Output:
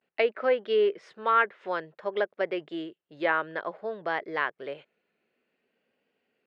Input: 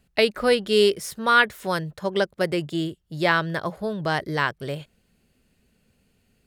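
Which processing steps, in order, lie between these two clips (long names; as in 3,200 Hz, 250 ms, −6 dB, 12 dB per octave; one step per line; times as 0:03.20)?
pitch vibrato 0.54 Hz 74 cents
Chebyshev band-pass filter 400–2,400 Hz, order 2
treble cut that deepens with the level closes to 2,200 Hz, closed at −16 dBFS
level −4 dB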